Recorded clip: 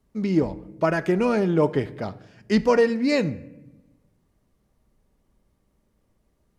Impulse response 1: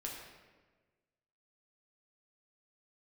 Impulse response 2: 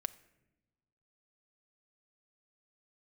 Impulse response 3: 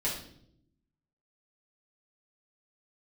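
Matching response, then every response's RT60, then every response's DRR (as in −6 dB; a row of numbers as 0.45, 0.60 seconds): 2; 1.4, 1.0, 0.70 seconds; −3.0, 12.0, −7.5 decibels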